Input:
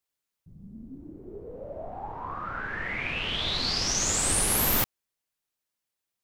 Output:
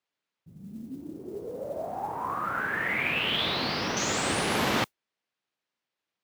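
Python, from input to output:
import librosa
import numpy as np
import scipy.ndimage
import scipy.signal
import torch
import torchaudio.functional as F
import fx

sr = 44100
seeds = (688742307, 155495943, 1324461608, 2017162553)

y = fx.delta_mod(x, sr, bps=32000, step_db=-34.5, at=(3.45, 3.97))
y = fx.bandpass_edges(y, sr, low_hz=150.0, high_hz=3800.0)
y = fx.mod_noise(y, sr, seeds[0], snr_db=27)
y = F.gain(torch.from_numpy(y), 4.5).numpy()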